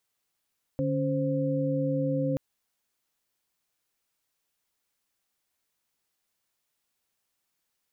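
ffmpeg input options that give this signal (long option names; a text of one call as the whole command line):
ffmpeg -f lavfi -i "aevalsrc='0.0355*(sin(2*PI*146.83*t)+sin(2*PI*277.18*t)+sin(2*PI*523.25*t))':duration=1.58:sample_rate=44100" out.wav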